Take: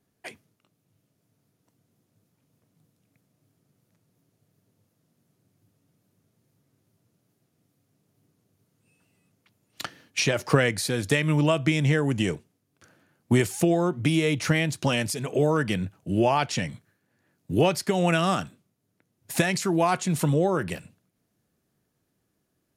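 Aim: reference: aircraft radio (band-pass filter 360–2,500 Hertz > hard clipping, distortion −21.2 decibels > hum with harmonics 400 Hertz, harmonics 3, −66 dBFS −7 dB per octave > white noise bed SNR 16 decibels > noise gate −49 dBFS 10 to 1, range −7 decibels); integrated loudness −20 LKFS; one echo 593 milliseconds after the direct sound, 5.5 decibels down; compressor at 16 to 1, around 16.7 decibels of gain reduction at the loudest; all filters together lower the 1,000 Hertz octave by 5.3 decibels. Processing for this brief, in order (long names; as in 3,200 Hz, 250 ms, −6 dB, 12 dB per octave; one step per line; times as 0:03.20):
parametric band 1,000 Hz −7 dB
downward compressor 16 to 1, threshold −33 dBFS
band-pass filter 360–2,500 Hz
single-tap delay 593 ms −5.5 dB
hard clipping −33.5 dBFS
hum with harmonics 400 Hz, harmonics 3, −66 dBFS −7 dB per octave
white noise bed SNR 16 dB
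noise gate −49 dBFS 10 to 1, range −7 dB
level +23.5 dB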